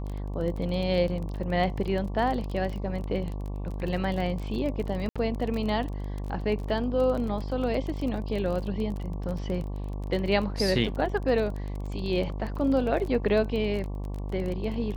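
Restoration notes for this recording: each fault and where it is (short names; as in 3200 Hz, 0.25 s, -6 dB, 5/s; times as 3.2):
buzz 50 Hz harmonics 23 -33 dBFS
crackle 24/s -32 dBFS
5.09–5.16 gap 66 ms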